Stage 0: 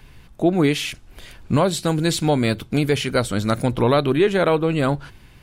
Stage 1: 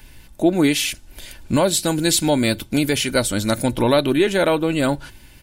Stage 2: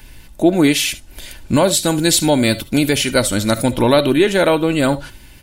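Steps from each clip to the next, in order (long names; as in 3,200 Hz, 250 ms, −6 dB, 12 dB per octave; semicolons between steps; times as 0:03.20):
high-shelf EQ 5,100 Hz +11.5 dB; notch filter 1,200 Hz, Q 8.5; comb filter 3.4 ms, depth 38%
convolution reverb, pre-delay 35 ms, DRR 16 dB; level +3.5 dB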